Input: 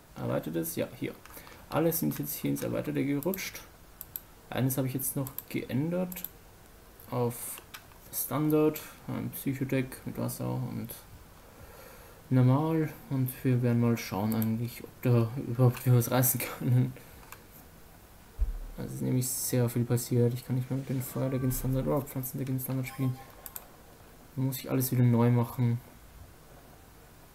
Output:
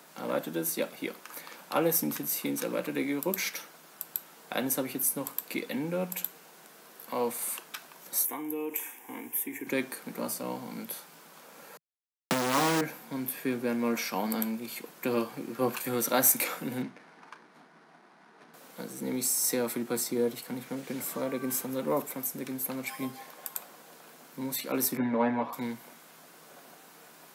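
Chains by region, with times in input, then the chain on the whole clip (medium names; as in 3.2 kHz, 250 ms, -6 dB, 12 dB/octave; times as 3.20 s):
8.25–9.67 s: treble shelf 8 kHz +7 dB + compression 10:1, threshold -28 dBFS + static phaser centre 880 Hz, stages 8
11.77–12.81 s: low-pass 1.3 kHz 6 dB/octave + companded quantiser 2-bit + three bands compressed up and down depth 70%
16.82–18.54 s: median filter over 15 samples + cabinet simulation 160–9400 Hz, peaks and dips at 520 Hz -9 dB, 1.9 kHz +3 dB, 7.5 kHz -10 dB + doubling 33 ms -11.5 dB
24.97–25.53 s: band-pass 130–2100 Hz + comb 7.1 ms, depth 89%
whole clip: steep high-pass 160 Hz 48 dB/octave; bass shelf 440 Hz -9 dB; trim +5 dB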